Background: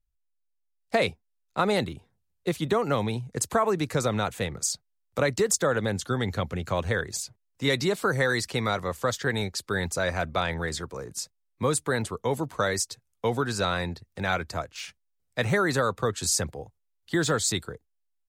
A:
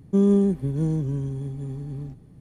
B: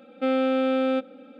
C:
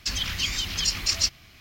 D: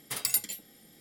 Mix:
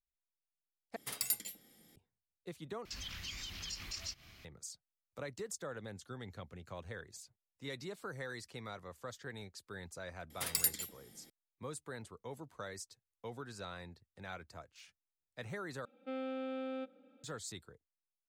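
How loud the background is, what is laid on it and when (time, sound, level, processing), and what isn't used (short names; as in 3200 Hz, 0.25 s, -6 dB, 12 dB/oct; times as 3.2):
background -19.5 dB
0.96 replace with D -7.5 dB
2.85 replace with C -6.5 dB + compressor 2:1, threshold -43 dBFS
10.3 add D -4.5 dB
15.85 replace with B -17.5 dB
not used: A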